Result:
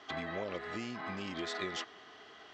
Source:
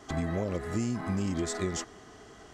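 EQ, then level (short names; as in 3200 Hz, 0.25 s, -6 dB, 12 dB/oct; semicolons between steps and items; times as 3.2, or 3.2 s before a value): HPF 870 Hz 6 dB/oct; ladder low-pass 4400 Hz, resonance 35%; +8.0 dB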